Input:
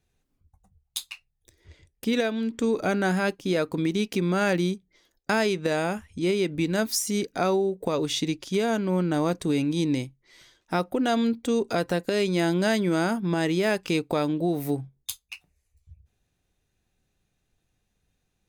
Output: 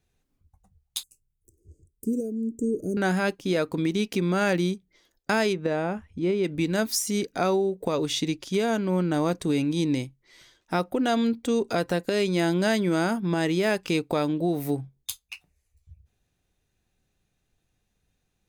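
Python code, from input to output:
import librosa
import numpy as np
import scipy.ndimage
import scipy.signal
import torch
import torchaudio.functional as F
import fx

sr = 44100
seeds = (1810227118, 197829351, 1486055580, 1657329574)

y = fx.ellip_bandstop(x, sr, low_hz=410.0, high_hz=7500.0, order=3, stop_db=40, at=(1.03, 2.97))
y = fx.lowpass(y, sr, hz=1300.0, slope=6, at=(5.52, 6.43), fade=0.02)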